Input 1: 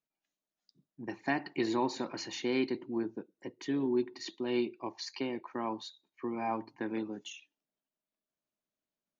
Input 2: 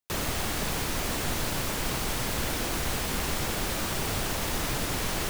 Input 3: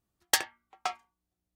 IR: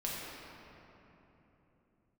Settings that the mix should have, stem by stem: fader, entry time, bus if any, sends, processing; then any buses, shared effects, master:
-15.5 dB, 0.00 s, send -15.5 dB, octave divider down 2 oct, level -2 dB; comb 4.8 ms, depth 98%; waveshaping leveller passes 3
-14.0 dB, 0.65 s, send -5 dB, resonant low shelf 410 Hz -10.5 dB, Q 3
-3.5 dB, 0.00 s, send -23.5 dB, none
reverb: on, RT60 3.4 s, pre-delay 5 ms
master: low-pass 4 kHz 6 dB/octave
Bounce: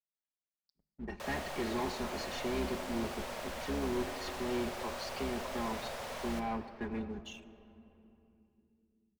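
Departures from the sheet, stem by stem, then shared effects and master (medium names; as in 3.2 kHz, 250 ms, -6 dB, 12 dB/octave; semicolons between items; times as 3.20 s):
stem 2: entry 0.65 s -> 1.10 s; stem 3: muted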